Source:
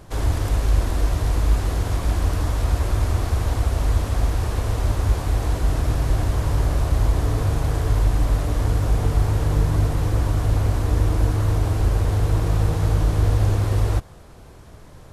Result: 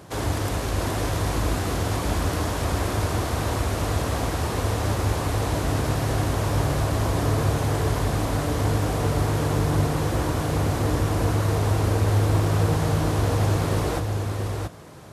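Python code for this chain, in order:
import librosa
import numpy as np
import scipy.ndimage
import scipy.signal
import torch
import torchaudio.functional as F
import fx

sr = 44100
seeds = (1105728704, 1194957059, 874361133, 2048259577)

y = scipy.signal.sosfilt(scipy.signal.butter(2, 120.0, 'highpass', fs=sr, output='sos'), x)
y = y + 10.0 ** (-5.0 / 20.0) * np.pad(y, (int(678 * sr / 1000.0), 0))[:len(y)]
y = y * 10.0 ** (2.5 / 20.0)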